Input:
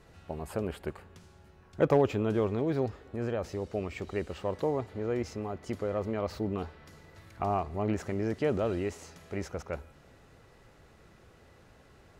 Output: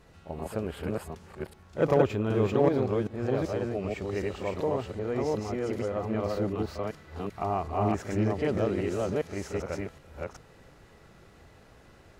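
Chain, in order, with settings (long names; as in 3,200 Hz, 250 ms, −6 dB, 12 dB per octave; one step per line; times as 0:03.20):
delay that plays each chunk backwards 384 ms, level −0.5 dB
backwards echo 37 ms −10.5 dB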